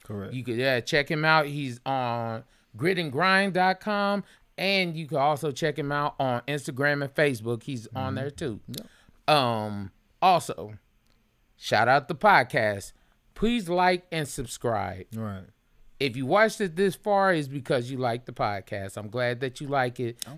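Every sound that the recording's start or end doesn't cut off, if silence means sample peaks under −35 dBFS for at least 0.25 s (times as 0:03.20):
0:02.77–0:04.21
0:04.58–0:08.82
0:09.28–0:09.87
0:10.22–0:10.75
0:11.63–0:12.88
0:13.37–0:15.39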